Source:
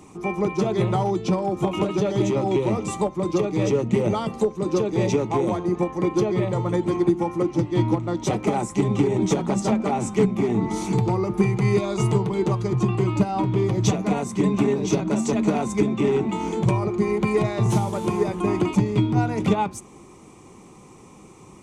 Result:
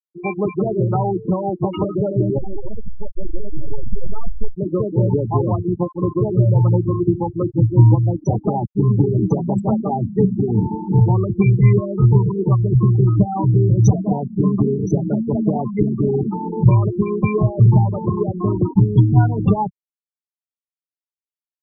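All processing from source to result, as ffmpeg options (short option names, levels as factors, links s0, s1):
-filter_complex "[0:a]asettb=1/sr,asplit=3[s0][s1][s2];[s0]atrim=end=2.384[s3];[s1]atrim=start=2.38:end=4.55,asetpts=PTS-STARTPTS,afade=t=in:d=0.004:c=qsin,afade=t=out:st=2.166:d=0.004:c=qsin,acompressor=threshold=0.0794:ratio=20:attack=3.2:release=140:knee=1:detection=peak,aeval=exprs='max(val(0),0)':c=same,asubboost=boost=3:cutoff=65[s4];[s2]atrim=start=4.546[s5];[s3][s4]acrossfade=d=0.004:c1=hsin:c2=qsin[s6];[s6][s5]acrossfade=d=0.004:c1=qsin:c2=hsin,asettb=1/sr,asplit=3[s7][s8][s9];[s7]atrim=end=5.344[s10];[s8]atrim=start=5.34:end=8.11,asetpts=PTS-STARTPTS,afade=t=in:d=0.004:c=qsin,afade=t=out:st=2.766:d=0.004:c=qsin,equalizer=f=110:w=6.6:g=8,bandreject=f=50:t=h:w=6,bandreject=f=100:t=h:w=6,bandreject=f=150:t=h:w=6,bandreject=f=200:t=h:w=6[s11];[s9]atrim=start=8.106[s12];[s10][s11]acrossfade=d=0.004:c1=hsin:c2=qsin[s13];[s13][s12]acrossfade=d=0.004:c1=qsin:c2=hsin,afftfilt=real='re*gte(hypot(re,im),0.141)':imag='im*gte(hypot(re,im),0.141)':win_size=1024:overlap=0.75,asubboost=boost=4.5:cutoff=120,volume=1.5"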